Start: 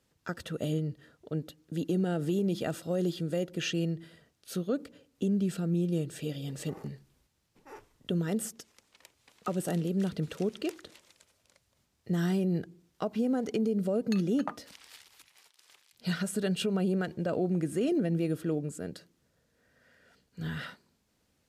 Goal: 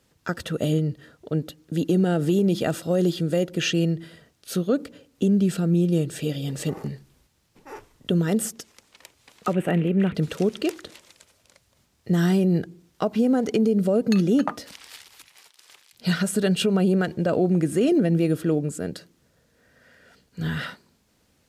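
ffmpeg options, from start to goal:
-filter_complex "[0:a]asettb=1/sr,asplit=3[s0][s1][s2];[s0]atrim=end=9.534[s3];[s1]atrim=start=9.53:end=10.15,asetpts=PTS-STARTPTS,afade=t=in:d=0.004:c=qsin,afade=t=out:st=0.616:d=0.004:c=qsin,highshelf=f=3500:t=q:w=3:g=-13.5[s4];[s2]atrim=start=10.146[s5];[s3][s4]acrossfade=d=0.004:c1=hsin:c2=qsin[s6];[s6][s5]acrossfade=d=0.004:c1=qsin:c2=hsin,volume=2.66"

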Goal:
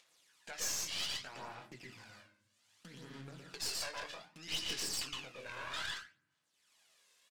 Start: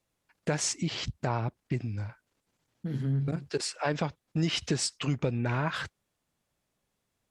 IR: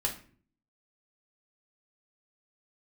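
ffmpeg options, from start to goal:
-filter_complex "[0:a]aeval=exprs='val(0)+0.5*0.01*sgn(val(0))':c=same,acompressor=threshold=0.0316:ratio=3,asplit=2[s0][s1];[s1]adelay=23,volume=0.447[s2];[s0][s2]amix=inputs=2:normalize=0,agate=range=0.00708:threshold=0.0158:ratio=16:detection=peak,highpass=150,aderivative,asplit=2[s3][s4];[1:a]atrim=start_sample=2205,adelay=113[s5];[s4][s5]afir=irnorm=-1:irlink=0,volume=0.596[s6];[s3][s6]amix=inputs=2:normalize=0,aphaser=in_gain=1:out_gain=1:delay=1.9:decay=0.49:speed=0.63:type=sinusoidal,lowpass=6100,bass=f=250:g=2,treble=f=4000:g=-5,acompressor=mode=upward:threshold=0.00224:ratio=2.5,aeval=exprs='(tanh(89.1*val(0)+0.7)-tanh(0.7))/89.1':c=same,volume=2.37"

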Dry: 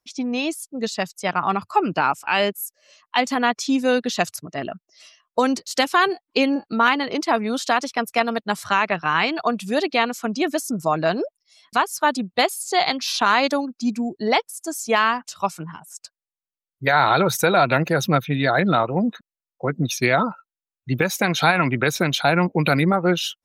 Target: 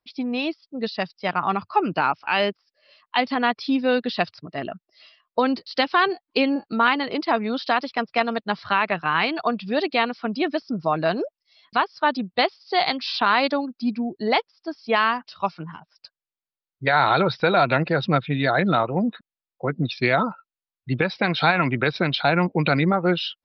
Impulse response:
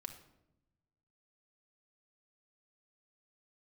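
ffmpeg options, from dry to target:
-af "aresample=11025,aresample=44100,volume=0.841"

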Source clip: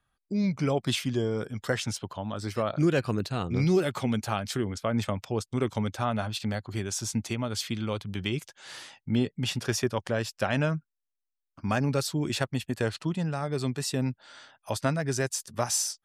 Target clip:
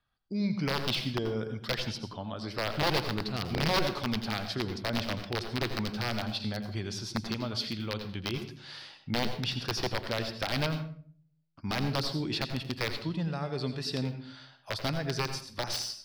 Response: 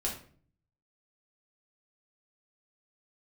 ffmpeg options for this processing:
-filter_complex "[0:a]aeval=exprs='(mod(7.94*val(0)+1,2)-1)/7.94':c=same,highshelf=f=5900:t=q:w=3:g=-8,asplit=2[s0][s1];[1:a]atrim=start_sample=2205,adelay=83[s2];[s1][s2]afir=irnorm=-1:irlink=0,volume=0.251[s3];[s0][s3]amix=inputs=2:normalize=0,volume=0.596"

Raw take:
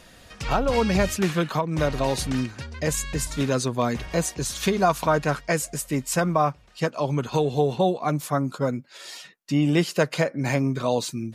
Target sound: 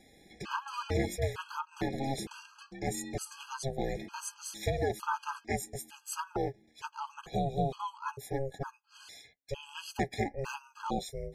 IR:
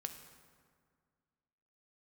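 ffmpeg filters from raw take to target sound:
-af "aeval=exprs='val(0)*sin(2*PI*270*n/s)':c=same,afftfilt=real='re*gt(sin(2*PI*1.1*pts/sr)*(1-2*mod(floor(b*sr/1024/830),2)),0)':imag='im*gt(sin(2*PI*1.1*pts/sr)*(1-2*mod(floor(b*sr/1024/830),2)),0)':win_size=1024:overlap=0.75,volume=0.531"

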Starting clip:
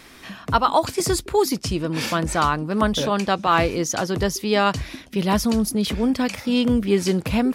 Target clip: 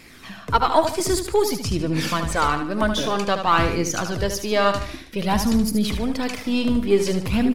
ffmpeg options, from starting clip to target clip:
-af "aeval=exprs='if(lt(val(0),0),0.708*val(0),val(0))':c=same,flanger=delay=0.4:depth=2.9:regen=37:speed=0.53:shape=sinusoidal,aecho=1:1:75|150|225|300:0.398|0.151|0.0575|0.0218,volume=1.58"

